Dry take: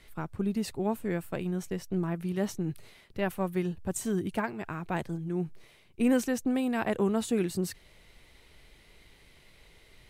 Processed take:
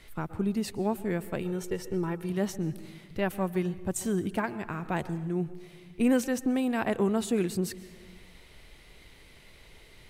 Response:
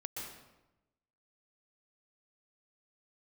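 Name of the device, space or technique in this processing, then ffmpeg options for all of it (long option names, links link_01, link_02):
compressed reverb return: -filter_complex "[0:a]asplit=2[link_01][link_02];[1:a]atrim=start_sample=2205[link_03];[link_02][link_03]afir=irnorm=-1:irlink=0,acompressor=threshold=-41dB:ratio=4,volume=-2.5dB[link_04];[link_01][link_04]amix=inputs=2:normalize=0,asettb=1/sr,asplit=3[link_05][link_06][link_07];[link_05]atrim=end=1.424[link_08];[link_06]atrim=start=1.42:end=2.3,asetpts=PTS-STARTPTS,afade=type=in:duration=0.004:curve=qsin,afade=type=out:start_time=0.876:duration=0.004:curve=qsin,aecho=1:1:2.2:0.56,atrim=end_sample=38808[link_09];[link_07]atrim=start=2.296[link_10];[link_08][link_09]acrossfade=duration=0.004:curve1=hsin:curve2=qsin[link_11];[link_11][link_10]acrossfade=duration=0.004:curve1=qsin:curve2=hsin"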